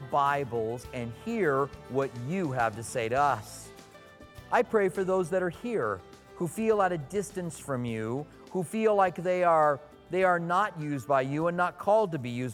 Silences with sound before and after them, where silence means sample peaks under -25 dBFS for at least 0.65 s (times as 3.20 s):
3.35–4.52 s